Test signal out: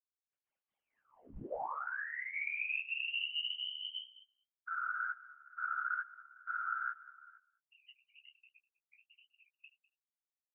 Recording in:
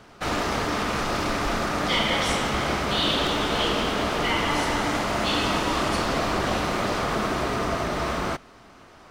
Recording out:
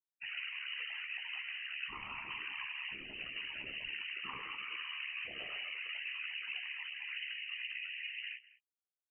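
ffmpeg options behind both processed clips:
-filter_complex "[0:a]highpass=340,afftfilt=real='re*gte(hypot(re,im),0.0891)':imag='im*gte(hypot(re,im),0.0891)':win_size=1024:overlap=0.75,afftdn=nr=18:nf=-44,equalizer=f=1300:w=0.66:g=-8.5,acompressor=threshold=0.0316:ratio=4,alimiter=level_in=1.58:limit=0.0631:level=0:latency=1:release=34,volume=0.631,flanger=delay=17.5:depth=4.9:speed=2.2,tremolo=f=72:d=0.974,afftfilt=real='hypot(re,im)*cos(2*PI*random(0))':imag='hypot(re,im)*sin(2*PI*random(1))':win_size=512:overlap=0.75,asplit=2[s0][s1];[s1]adelay=15,volume=0.335[s2];[s0][s2]amix=inputs=2:normalize=0,asplit=2[s3][s4];[s4]aecho=0:1:201:0.106[s5];[s3][s5]amix=inputs=2:normalize=0,lowpass=f=2700:t=q:w=0.5098,lowpass=f=2700:t=q:w=0.6013,lowpass=f=2700:t=q:w=0.9,lowpass=f=2700:t=q:w=2.563,afreqshift=-3200,volume=2.11"

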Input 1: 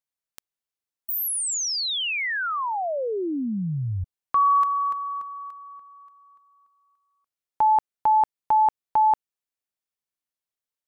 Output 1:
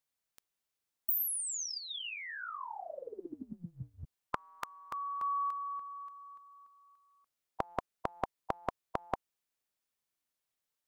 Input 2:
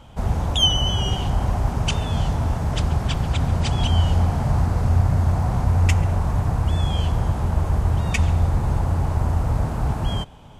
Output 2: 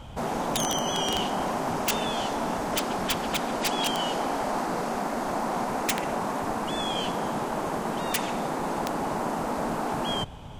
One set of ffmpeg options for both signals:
-af "afftfilt=real='re*lt(hypot(re,im),0.251)':imag='im*lt(hypot(re,im),0.251)':win_size=1024:overlap=0.75,aeval=exprs='(mod(9.44*val(0)+1,2)-1)/9.44':c=same,volume=1.41"

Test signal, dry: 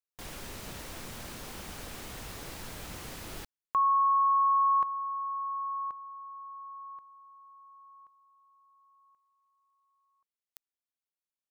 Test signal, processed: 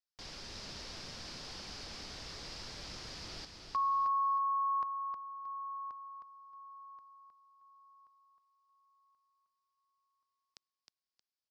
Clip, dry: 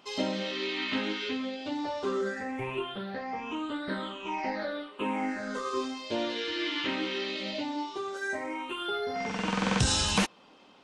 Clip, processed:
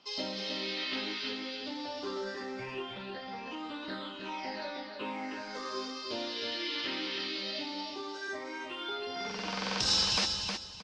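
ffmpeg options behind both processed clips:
-filter_complex "[0:a]lowpass=f=5000:t=q:w=4.5,aecho=1:1:313|626|939|1252:0.531|0.143|0.0387|0.0104,acrossover=split=340|3900[s0][s1][s2];[s0]asoftclip=type=tanh:threshold=0.0211[s3];[s3][s1][s2]amix=inputs=3:normalize=0,volume=0.447"

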